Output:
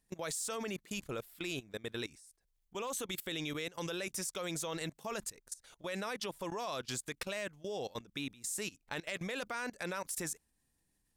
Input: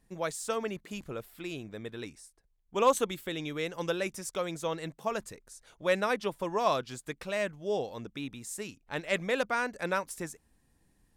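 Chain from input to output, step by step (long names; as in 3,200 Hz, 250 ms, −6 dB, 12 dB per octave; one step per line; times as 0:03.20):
high-shelf EQ 2,500 Hz +9.5 dB
brickwall limiter −22 dBFS, peak gain reduction 12 dB
output level in coarse steps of 20 dB
level +1.5 dB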